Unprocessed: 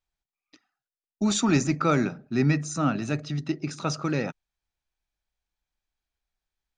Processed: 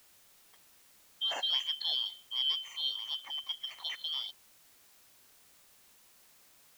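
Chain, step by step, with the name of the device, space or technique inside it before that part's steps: split-band scrambled radio (four frequency bands reordered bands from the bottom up 3412; band-pass 390–3000 Hz; white noise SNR 23 dB); trim -6.5 dB

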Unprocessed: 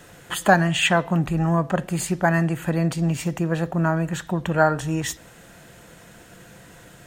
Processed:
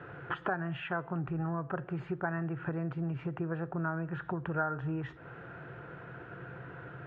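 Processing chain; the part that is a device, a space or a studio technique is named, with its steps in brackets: bass amplifier (compression 4:1, threshold -34 dBFS, peak gain reduction 19.5 dB; cabinet simulation 80–2200 Hz, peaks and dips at 130 Hz +8 dB, 210 Hz -9 dB, 390 Hz +6 dB, 590 Hz -3 dB, 1.4 kHz +8 dB, 2 kHz -6 dB)

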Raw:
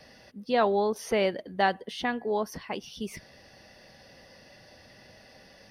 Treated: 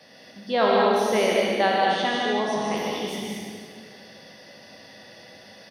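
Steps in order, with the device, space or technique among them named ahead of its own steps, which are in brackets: spectral sustain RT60 0.49 s; stadium PA (high-pass 170 Hz 12 dB/octave; peaking EQ 3.5 kHz +7 dB 0.2 oct; loudspeakers at several distances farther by 52 m -4 dB, 75 m -5 dB; reverberation RT60 1.8 s, pre-delay 69 ms, DRR 1 dB); 1.86–2.77 s: steep low-pass 9.7 kHz 48 dB/octave

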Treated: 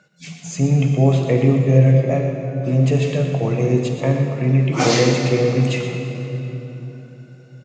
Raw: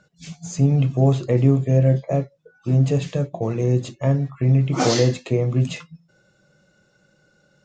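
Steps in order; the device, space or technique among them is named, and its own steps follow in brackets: PA in a hall (high-pass 130 Hz; peaking EQ 2.3 kHz +7 dB 0.66 oct; delay 121 ms -10.5 dB; reverberation RT60 3.7 s, pre-delay 45 ms, DRR 3.5 dB); trim +1.5 dB

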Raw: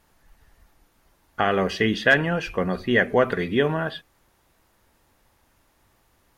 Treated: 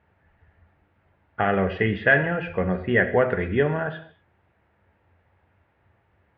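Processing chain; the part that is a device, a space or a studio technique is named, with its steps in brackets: bass cabinet (cabinet simulation 72–2400 Hz, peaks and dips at 88 Hz +10 dB, 290 Hz -5 dB, 1.1 kHz -6 dB); gated-style reverb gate 260 ms falling, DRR 8.5 dB

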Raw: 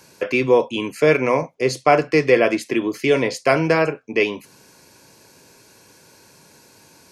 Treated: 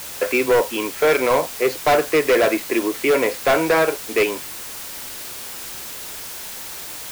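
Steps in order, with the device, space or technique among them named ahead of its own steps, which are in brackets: aircraft radio (band-pass 380–2300 Hz; hard clipper -16.5 dBFS, distortion -9 dB; white noise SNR 12 dB); trim +4.5 dB

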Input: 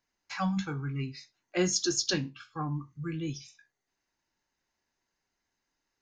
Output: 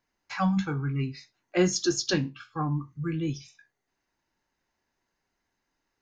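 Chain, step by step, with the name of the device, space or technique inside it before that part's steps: behind a face mask (treble shelf 3.1 kHz -7.5 dB); trim +5 dB

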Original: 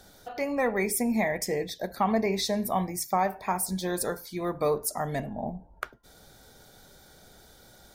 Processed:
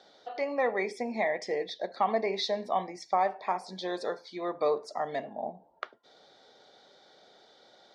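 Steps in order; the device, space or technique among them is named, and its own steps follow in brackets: phone earpiece (cabinet simulation 450–4400 Hz, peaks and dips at 950 Hz -3 dB, 1.5 kHz -8 dB, 2.5 kHz -6 dB); trim +1.5 dB

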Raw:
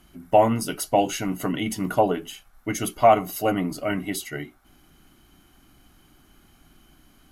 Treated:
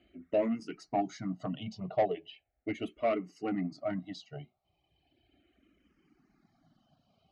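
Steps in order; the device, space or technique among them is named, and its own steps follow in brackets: reverb removal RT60 1.4 s; barber-pole phaser into a guitar amplifier (barber-pole phaser -0.37 Hz; saturation -19.5 dBFS, distortion -11 dB; cabinet simulation 89–4300 Hz, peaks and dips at 660 Hz +7 dB, 990 Hz -10 dB, 1.5 kHz -10 dB, 3.4 kHz -7 dB); 1.80–2.86 s: level-controlled noise filter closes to 1.5 kHz, open at -24 dBFS; trim -4 dB

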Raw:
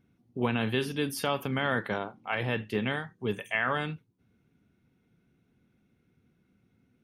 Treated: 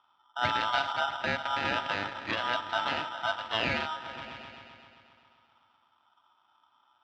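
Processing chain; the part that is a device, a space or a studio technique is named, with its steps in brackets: 0.99–1.85 s: low-pass 1.4 kHz 12 dB/octave; delay with an opening low-pass 130 ms, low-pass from 200 Hz, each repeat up 1 oct, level -6 dB; ring modulator pedal into a guitar cabinet (polarity switched at an audio rate 1.1 kHz; cabinet simulation 85–4000 Hz, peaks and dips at 95 Hz +7 dB, 270 Hz +4 dB, 420 Hz -9 dB)

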